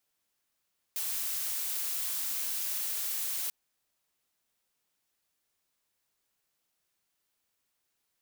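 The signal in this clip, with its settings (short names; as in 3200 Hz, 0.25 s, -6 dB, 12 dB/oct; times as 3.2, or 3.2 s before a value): noise blue, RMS -33.5 dBFS 2.54 s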